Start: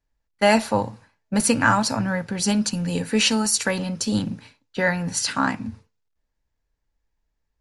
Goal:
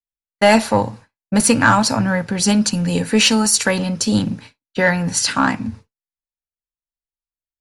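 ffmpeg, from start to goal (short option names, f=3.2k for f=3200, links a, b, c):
-af "agate=range=-33dB:threshold=-39dB:ratio=3:detection=peak,acontrast=57"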